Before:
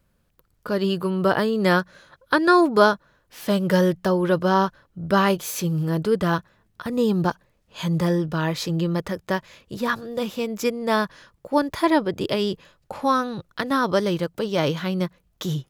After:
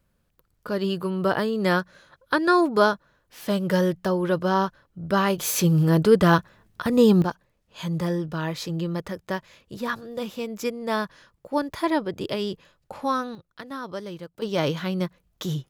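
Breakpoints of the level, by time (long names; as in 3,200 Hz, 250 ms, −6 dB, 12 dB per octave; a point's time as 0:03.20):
−3 dB
from 0:05.38 +4.5 dB
from 0:07.22 −4.5 dB
from 0:13.35 −13 dB
from 0:14.42 −2 dB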